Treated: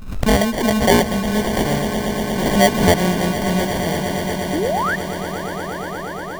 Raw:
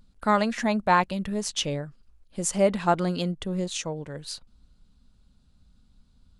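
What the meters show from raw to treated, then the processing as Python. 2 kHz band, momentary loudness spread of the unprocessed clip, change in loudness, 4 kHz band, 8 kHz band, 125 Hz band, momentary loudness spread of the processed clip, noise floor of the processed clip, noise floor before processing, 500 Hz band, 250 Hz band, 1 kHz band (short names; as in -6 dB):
+11.0 dB, 14 LU, +7.5 dB, +9.5 dB, +6.5 dB, +11.0 dB, 11 LU, -28 dBFS, -62 dBFS, +9.5 dB, +10.5 dB, +6.0 dB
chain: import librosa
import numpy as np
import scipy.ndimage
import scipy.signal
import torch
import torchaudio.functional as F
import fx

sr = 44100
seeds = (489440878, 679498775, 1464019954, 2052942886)

p1 = fx.sample_hold(x, sr, seeds[0], rate_hz=1300.0, jitter_pct=0)
p2 = fx.spec_paint(p1, sr, seeds[1], shape='rise', start_s=4.53, length_s=0.43, low_hz=270.0, high_hz=1900.0, level_db=-27.0)
p3 = p2 + fx.echo_swell(p2, sr, ms=118, loudest=8, wet_db=-14.0, dry=0)
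p4 = fx.pre_swell(p3, sr, db_per_s=72.0)
y = p4 * librosa.db_to_amplitude(6.5)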